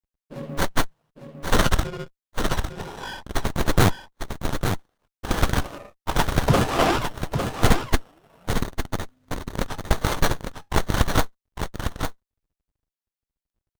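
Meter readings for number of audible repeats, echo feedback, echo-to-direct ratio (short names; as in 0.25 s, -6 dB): 1, no steady repeat, -7.0 dB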